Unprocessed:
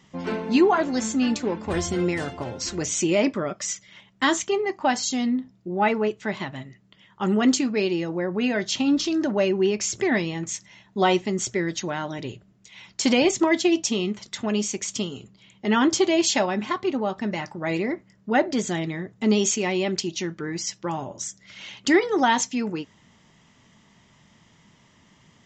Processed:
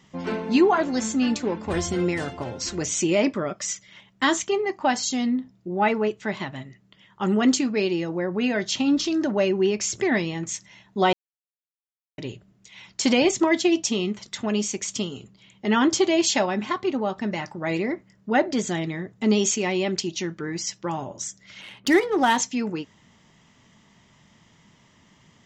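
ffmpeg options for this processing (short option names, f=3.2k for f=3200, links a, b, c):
-filter_complex "[0:a]asettb=1/sr,asplit=3[a][b][c];[a]atrim=end=21.614[d];[b]atrim=start=21.61:end=22.37,asetpts=PTS-STARTPTS,afade=t=in:d=0.004:c=qsin,afade=t=out:st=0.756:d=0.004:c=qsin,adynamicsmooth=sensitivity=5.5:basefreq=2.3k[e];[c]atrim=start=22.366[f];[d][e]acrossfade=d=0.004:c1=hsin:c2=qsin[g];[g][f]acrossfade=d=0.004:c1=qsin:c2=hsin,asplit=3[h][i][j];[h]atrim=end=11.13,asetpts=PTS-STARTPTS,afade=t=out:st=11.126:d=0.004:c=hsin[k];[i]atrim=start=11.13:end=12.18,asetpts=PTS-STARTPTS,volume=0[l];[j]atrim=start=12.18,asetpts=PTS-STARTPTS,afade=t=in:d=0.004:c=hsin[m];[k][l][m]concat=n=3:v=0:a=1"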